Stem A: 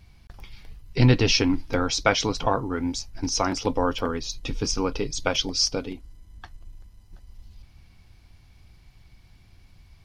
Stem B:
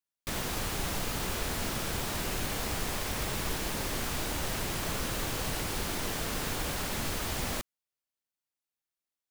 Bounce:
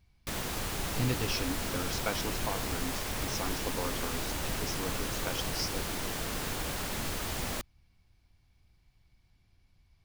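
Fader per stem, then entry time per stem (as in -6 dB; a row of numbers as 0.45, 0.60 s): -13.5, -1.5 dB; 0.00, 0.00 s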